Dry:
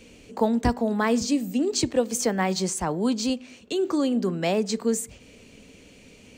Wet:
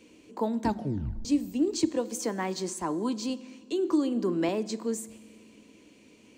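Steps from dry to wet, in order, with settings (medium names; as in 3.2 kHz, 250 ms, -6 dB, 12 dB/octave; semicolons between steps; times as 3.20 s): high-pass 150 Hz 6 dB/octave; small resonant body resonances 320/1000 Hz, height 12 dB, ringing for 50 ms; 0.63 s: tape stop 0.62 s; reverberation RT60 1.6 s, pre-delay 5 ms, DRR 17 dB; 3.92–4.49 s: three bands compressed up and down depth 70%; trim -8 dB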